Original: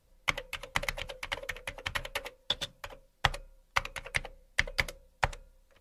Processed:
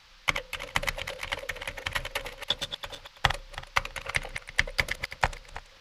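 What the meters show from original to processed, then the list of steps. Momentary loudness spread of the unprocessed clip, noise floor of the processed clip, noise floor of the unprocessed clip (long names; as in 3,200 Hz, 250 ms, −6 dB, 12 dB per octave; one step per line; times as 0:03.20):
8 LU, −55 dBFS, −67 dBFS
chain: feedback delay that plays each chunk backwards 164 ms, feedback 41%, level −8.5 dB
noise in a band 820–5,100 Hz −60 dBFS
level +3 dB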